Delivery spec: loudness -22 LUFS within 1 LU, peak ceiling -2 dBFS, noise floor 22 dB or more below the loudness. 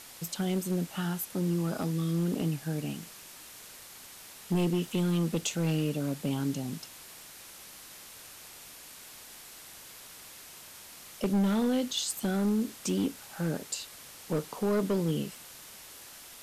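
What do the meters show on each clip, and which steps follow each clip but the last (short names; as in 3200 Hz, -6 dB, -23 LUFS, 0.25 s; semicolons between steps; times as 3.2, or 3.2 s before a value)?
clipped 1.4%; flat tops at -22.5 dBFS; noise floor -49 dBFS; noise floor target -53 dBFS; loudness -31.0 LUFS; peak -22.5 dBFS; loudness target -22.0 LUFS
-> clip repair -22.5 dBFS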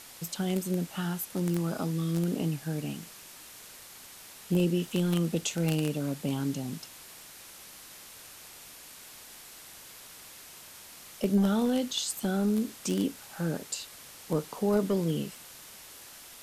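clipped 0.0%; noise floor -49 dBFS; noise floor target -53 dBFS
-> noise print and reduce 6 dB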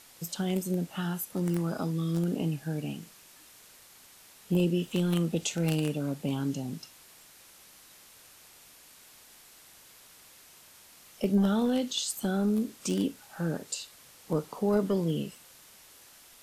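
noise floor -55 dBFS; loudness -30.5 LUFS; peak -13.5 dBFS; loudness target -22.0 LUFS
-> gain +8.5 dB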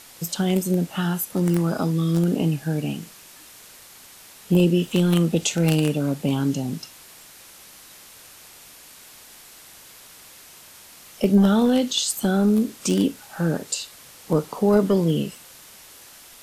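loudness -22.0 LUFS; peak -5.0 dBFS; noise floor -47 dBFS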